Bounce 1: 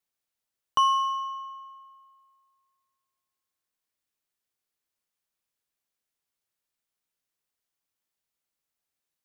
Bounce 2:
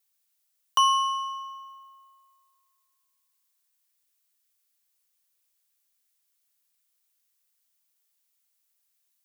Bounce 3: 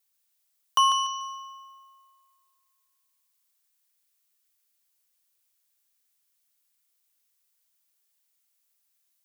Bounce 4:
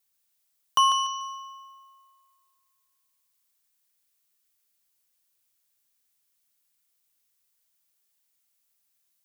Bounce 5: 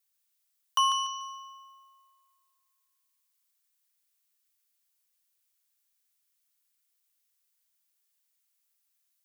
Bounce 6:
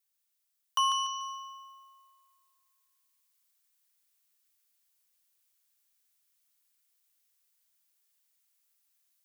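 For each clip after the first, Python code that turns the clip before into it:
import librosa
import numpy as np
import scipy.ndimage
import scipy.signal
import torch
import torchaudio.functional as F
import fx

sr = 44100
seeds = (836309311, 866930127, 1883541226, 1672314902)

y1 = fx.tilt_eq(x, sr, slope=3.5)
y2 = fx.echo_thinned(y1, sr, ms=146, feedback_pct=28, hz=420.0, wet_db=-7)
y3 = fx.low_shelf(y2, sr, hz=220.0, db=9.5)
y4 = scipy.signal.sosfilt(scipy.signal.butter(2, 910.0, 'highpass', fs=sr, output='sos'), y3)
y4 = y4 * 10.0 ** (-3.0 / 20.0)
y5 = fx.rider(y4, sr, range_db=10, speed_s=0.5)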